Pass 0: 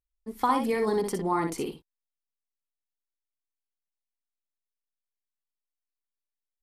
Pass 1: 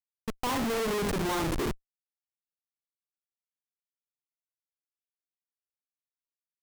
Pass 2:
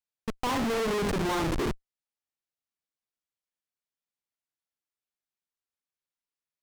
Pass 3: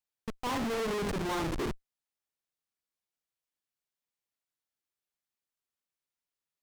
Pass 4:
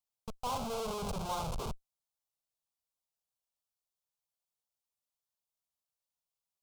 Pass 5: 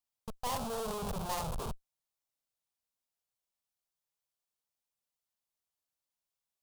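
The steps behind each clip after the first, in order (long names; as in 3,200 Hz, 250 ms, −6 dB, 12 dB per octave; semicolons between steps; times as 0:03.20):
comparator with hysteresis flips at −32.5 dBFS; level +5 dB
high-shelf EQ 10,000 Hz −10 dB; level +1.5 dB
brickwall limiter −30.5 dBFS, peak gain reduction 9 dB
phaser with its sweep stopped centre 760 Hz, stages 4
stylus tracing distortion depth 0.49 ms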